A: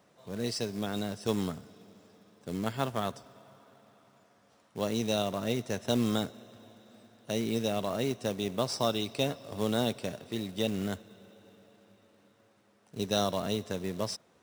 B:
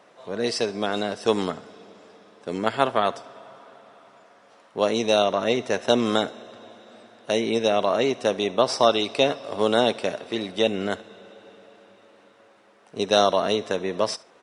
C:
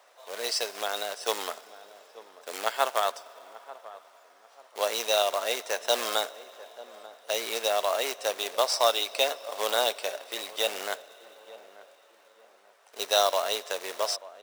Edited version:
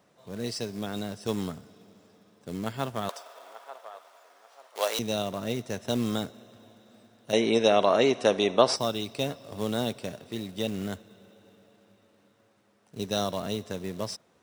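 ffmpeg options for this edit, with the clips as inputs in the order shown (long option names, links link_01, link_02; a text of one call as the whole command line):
ffmpeg -i take0.wav -i take1.wav -i take2.wav -filter_complex "[0:a]asplit=3[link_01][link_02][link_03];[link_01]atrim=end=3.092[link_04];[2:a]atrim=start=3.088:end=4.992[link_05];[link_02]atrim=start=4.988:end=7.332[link_06];[1:a]atrim=start=7.328:end=8.762[link_07];[link_03]atrim=start=8.758[link_08];[link_04][link_05]acrossfade=duration=0.004:curve1=hsin:curve2=hsin[link_09];[link_09][link_06]acrossfade=duration=0.004:curve1=hsin:curve2=hsin[link_10];[link_10][link_07]acrossfade=duration=0.004:curve1=hsin:curve2=hsin[link_11];[link_11][link_08]acrossfade=duration=0.004:curve1=hsin:curve2=hsin" out.wav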